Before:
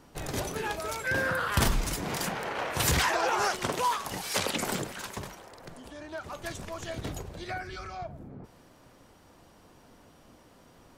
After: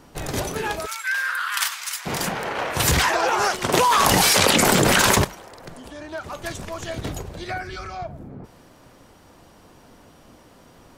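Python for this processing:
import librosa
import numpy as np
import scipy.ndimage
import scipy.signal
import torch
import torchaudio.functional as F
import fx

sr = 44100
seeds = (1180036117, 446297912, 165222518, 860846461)

y = fx.highpass(x, sr, hz=1200.0, slope=24, at=(0.85, 2.05), fade=0.02)
y = fx.env_flatten(y, sr, amount_pct=100, at=(3.72, 5.23), fade=0.02)
y = y * 10.0 ** (6.5 / 20.0)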